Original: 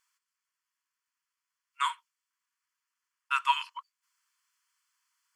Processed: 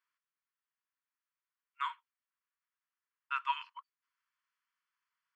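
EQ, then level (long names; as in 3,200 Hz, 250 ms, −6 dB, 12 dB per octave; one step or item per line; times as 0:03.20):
high-pass filter 1,100 Hz 12 dB per octave
head-to-tape spacing loss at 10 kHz 34 dB
0.0 dB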